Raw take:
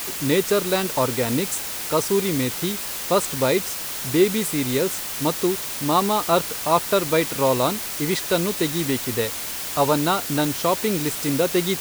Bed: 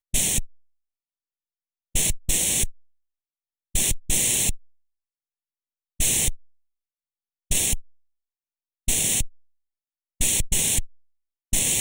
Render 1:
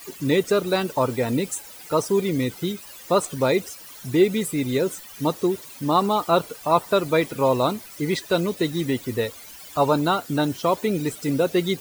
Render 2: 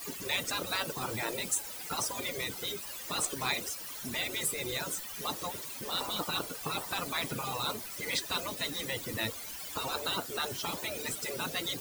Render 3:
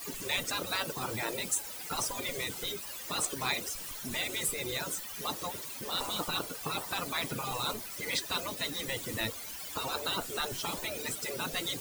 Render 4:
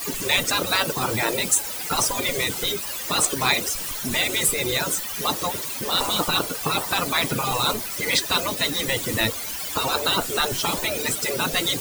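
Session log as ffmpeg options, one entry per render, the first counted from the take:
ffmpeg -i in.wav -af "afftdn=noise_reduction=16:noise_floor=-30" out.wav
ffmpeg -i in.wav -af "afftfilt=real='re*lt(hypot(re,im),0.178)':imag='im*lt(hypot(re,im),0.178)':win_size=1024:overlap=0.75,adynamicequalizer=threshold=0.00631:dfrequency=2200:dqfactor=1.4:tfrequency=2200:tqfactor=1.4:attack=5:release=100:ratio=0.375:range=2:mode=cutabove:tftype=bell" out.wav
ffmpeg -i in.wav -i bed.wav -filter_complex "[1:a]volume=-27dB[link_01];[0:a][link_01]amix=inputs=2:normalize=0" out.wav
ffmpeg -i in.wav -af "volume=11.5dB" out.wav

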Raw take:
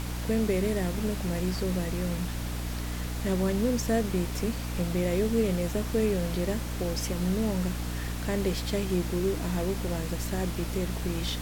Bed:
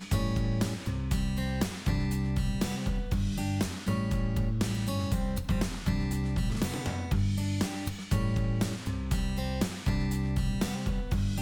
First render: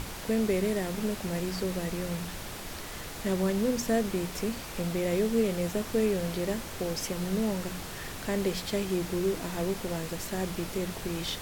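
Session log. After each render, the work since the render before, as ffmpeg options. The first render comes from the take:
ffmpeg -i in.wav -af "bandreject=frequency=60:width_type=h:width=6,bandreject=frequency=120:width_type=h:width=6,bandreject=frequency=180:width_type=h:width=6,bandreject=frequency=240:width_type=h:width=6,bandreject=frequency=300:width_type=h:width=6" out.wav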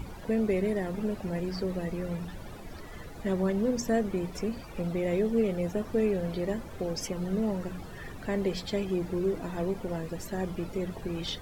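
ffmpeg -i in.wav -af "afftdn=noise_reduction=15:noise_floor=-40" out.wav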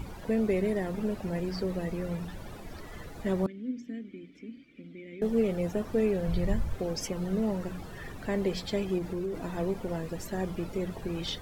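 ffmpeg -i in.wav -filter_complex "[0:a]asettb=1/sr,asplit=3[link_01][link_02][link_03];[link_01]atrim=end=3.464[link_04];[link_02]atrim=start=3.46:end=5.22,asetpts=PTS-STARTPTS,afade=type=in:duration=0.004:curve=qsin,afade=type=out:start_time=1.756:duration=0.004:curve=qsin,asplit=3[link_05][link_06][link_07];[link_05]bandpass=frequency=270:width_type=q:width=8,volume=0dB[link_08];[link_06]bandpass=frequency=2290:width_type=q:width=8,volume=-6dB[link_09];[link_07]bandpass=frequency=3010:width_type=q:width=8,volume=-9dB[link_10];[link_08][link_09][link_10]amix=inputs=3:normalize=0[link_11];[link_03]atrim=start=5.216[link_12];[link_04][link_11]acrossfade=duration=0.004:curve1=hsin:curve2=qsin[link_13];[link_13][link_12]acrossfade=duration=0.004:curve1=qsin:curve2=hsin,asplit=3[link_14][link_15][link_16];[link_14]afade=type=out:start_time=6.27:duration=0.02[link_17];[link_15]asubboost=boost=8:cutoff=110,afade=type=in:start_time=6.27:duration=0.02,afade=type=out:start_time=6.73:duration=0.02[link_18];[link_16]afade=type=in:start_time=6.73:duration=0.02[link_19];[link_17][link_18][link_19]amix=inputs=3:normalize=0,asettb=1/sr,asplit=3[link_20][link_21][link_22];[link_20]atrim=end=8.984[link_23];[link_21]atrim=start=8.98:end=9.41,asetpts=PTS-STARTPTS,afade=type=in:duration=0.004:curve=qsin,afade=type=out:start_time=0.426:duration=0.004:curve=qsin,acompressor=threshold=-29dB:ratio=6:attack=3.2:release=140:knee=1:detection=peak[link_24];[link_22]atrim=start=9.406[link_25];[link_23][link_24]acrossfade=duration=0.004:curve1=hsin:curve2=qsin[link_26];[link_26][link_25]acrossfade=duration=0.004:curve1=qsin:curve2=hsin" out.wav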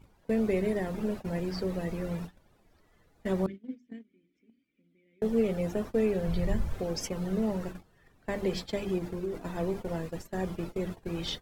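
ffmpeg -i in.wav -af "bandreject=frequency=50:width_type=h:width=6,bandreject=frequency=100:width_type=h:width=6,bandreject=frequency=150:width_type=h:width=6,bandreject=frequency=200:width_type=h:width=6,bandreject=frequency=250:width_type=h:width=6,bandreject=frequency=300:width_type=h:width=6,bandreject=frequency=350:width_type=h:width=6,bandreject=frequency=400:width_type=h:width=6,agate=range=-21dB:threshold=-36dB:ratio=16:detection=peak" out.wav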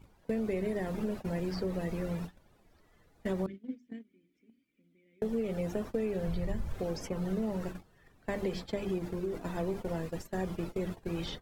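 ffmpeg -i in.wav -filter_complex "[0:a]acrossover=split=2000[link_01][link_02];[link_02]alimiter=level_in=11.5dB:limit=-24dB:level=0:latency=1:release=270,volume=-11.5dB[link_03];[link_01][link_03]amix=inputs=2:normalize=0,acompressor=threshold=-29dB:ratio=6" out.wav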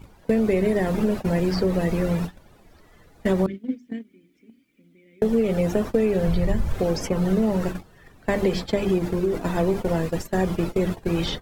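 ffmpeg -i in.wav -af "volume=12dB" out.wav

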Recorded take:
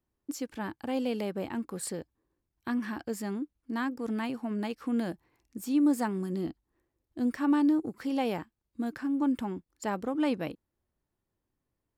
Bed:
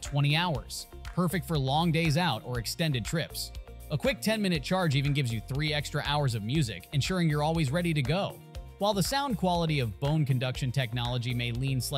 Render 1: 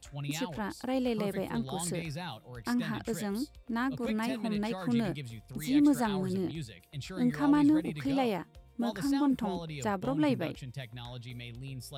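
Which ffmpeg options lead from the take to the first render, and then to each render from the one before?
ffmpeg -i in.wav -i bed.wav -filter_complex "[1:a]volume=-12.5dB[link_01];[0:a][link_01]amix=inputs=2:normalize=0" out.wav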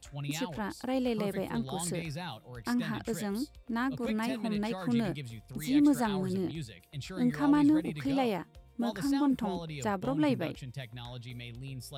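ffmpeg -i in.wav -af anull out.wav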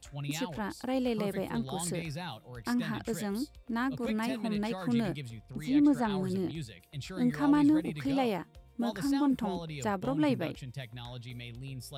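ffmpeg -i in.wav -filter_complex "[0:a]asettb=1/sr,asplit=3[link_01][link_02][link_03];[link_01]atrim=end=5.304[link_04];[link_02]atrim=start=5.3:end=6.1,asetpts=PTS-STARTPTS,afade=type=in:duration=0.004:curve=qsin,afade=type=out:start_time=0.796:duration=0.004:curve=qsin,lowpass=frequency=2800:poles=1[link_05];[link_03]atrim=start=6.096[link_06];[link_04][link_05]acrossfade=duration=0.004:curve1=hsin:curve2=qsin[link_07];[link_07][link_06]acrossfade=duration=0.004:curve1=qsin:curve2=hsin" out.wav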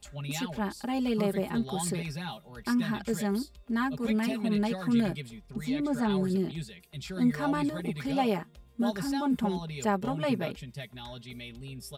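ffmpeg -i in.wav -af "aecho=1:1:4.9:0.87" out.wav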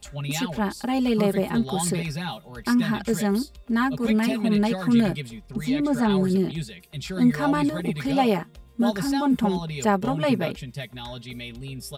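ffmpeg -i in.wav -af "volume=6.5dB" out.wav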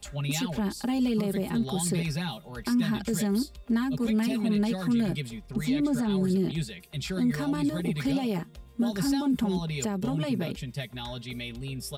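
ffmpeg -i in.wav -filter_complex "[0:a]alimiter=limit=-18dB:level=0:latency=1:release=40,acrossover=split=390|3000[link_01][link_02][link_03];[link_02]acompressor=threshold=-37dB:ratio=6[link_04];[link_01][link_04][link_03]amix=inputs=3:normalize=0" out.wav

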